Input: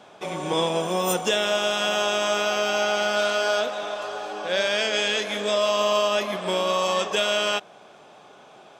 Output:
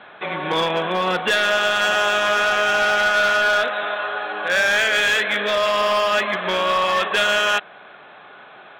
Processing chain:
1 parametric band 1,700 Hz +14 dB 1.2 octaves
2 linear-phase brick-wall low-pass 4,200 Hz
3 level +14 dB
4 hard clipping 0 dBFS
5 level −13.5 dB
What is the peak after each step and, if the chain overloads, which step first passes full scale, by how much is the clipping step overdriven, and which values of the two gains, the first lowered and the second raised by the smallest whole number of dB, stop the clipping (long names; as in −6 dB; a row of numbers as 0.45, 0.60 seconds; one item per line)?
−4.0, −4.5, +9.5, 0.0, −13.5 dBFS
step 3, 9.5 dB
step 3 +4 dB, step 5 −3.5 dB